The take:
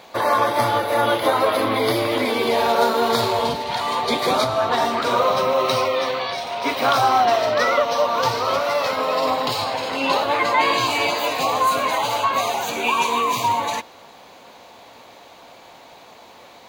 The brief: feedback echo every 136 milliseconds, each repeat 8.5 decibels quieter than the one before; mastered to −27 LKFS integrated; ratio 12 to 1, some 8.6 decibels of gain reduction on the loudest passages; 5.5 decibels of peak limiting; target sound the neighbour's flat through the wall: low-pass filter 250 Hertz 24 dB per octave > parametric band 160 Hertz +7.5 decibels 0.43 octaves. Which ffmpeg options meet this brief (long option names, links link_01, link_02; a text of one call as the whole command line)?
ffmpeg -i in.wav -af "acompressor=threshold=-22dB:ratio=12,alimiter=limit=-18.5dB:level=0:latency=1,lowpass=frequency=250:width=0.5412,lowpass=frequency=250:width=1.3066,equalizer=frequency=160:width_type=o:width=0.43:gain=7.5,aecho=1:1:136|272|408|544:0.376|0.143|0.0543|0.0206,volume=15dB" out.wav